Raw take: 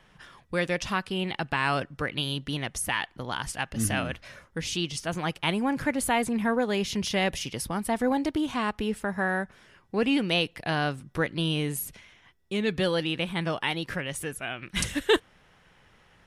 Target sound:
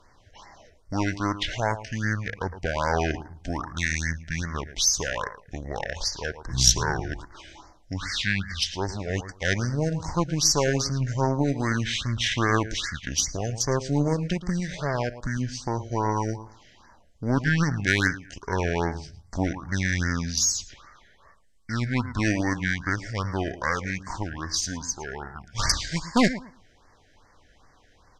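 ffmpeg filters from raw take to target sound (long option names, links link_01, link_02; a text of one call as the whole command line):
ffmpeg -i in.wav -filter_complex "[0:a]lowshelf=frequency=78:gain=9.5,asplit=2[link_01][link_02];[link_02]adelay=64,lowpass=frequency=4700:poles=1,volume=-12dB,asplit=2[link_03][link_04];[link_04]adelay=64,lowpass=frequency=4700:poles=1,volume=0.22,asplit=2[link_05][link_06];[link_06]adelay=64,lowpass=frequency=4700:poles=1,volume=0.22[link_07];[link_01][link_03][link_05][link_07]amix=inputs=4:normalize=0,aeval=exprs='0.316*(cos(1*acos(clip(val(0)/0.316,-1,1)))-cos(1*PI/2))+0.112*(cos(2*acos(clip(val(0)/0.316,-1,1)))-cos(2*PI/2))+0.0112*(cos(5*acos(clip(val(0)/0.316,-1,1)))-cos(5*PI/2))+0.0126*(cos(7*acos(clip(val(0)/0.316,-1,1)))-cos(7*PI/2))':channel_layout=same,crystalizer=i=3:c=0,asetrate=25442,aresample=44100,highshelf=frequency=9000:gain=-7.5,afftfilt=real='re*(1-between(b*sr/1024,970*pow(3200/970,0.5+0.5*sin(2*PI*2.5*pts/sr))/1.41,970*pow(3200/970,0.5+0.5*sin(2*PI*2.5*pts/sr))*1.41))':imag='im*(1-between(b*sr/1024,970*pow(3200/970,0.5+0.5*sin(2*PI*2.5*pts/sr))/1.41,970*pow(3200/970,0.5+0.5*sin(2*PI*2.5*pts/sr))*1.41))':win_size=1024:overlap=0.75,volume=-1dB" out.wav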